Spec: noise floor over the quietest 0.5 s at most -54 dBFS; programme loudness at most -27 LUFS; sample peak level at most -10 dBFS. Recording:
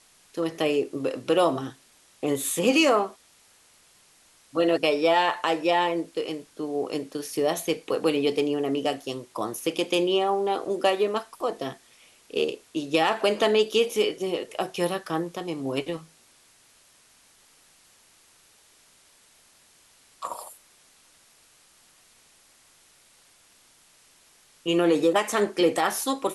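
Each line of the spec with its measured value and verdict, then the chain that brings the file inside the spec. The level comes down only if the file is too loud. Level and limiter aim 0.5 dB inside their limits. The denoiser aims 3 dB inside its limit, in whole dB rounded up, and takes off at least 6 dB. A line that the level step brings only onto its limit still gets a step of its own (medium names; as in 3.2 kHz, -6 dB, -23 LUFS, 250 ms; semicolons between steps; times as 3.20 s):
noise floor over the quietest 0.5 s -59 dBFS: pass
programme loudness -25.5 LUFS: fail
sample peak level -8.0 dBFS: fail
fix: trim -2 dB; peak limiter -10.5 dBFS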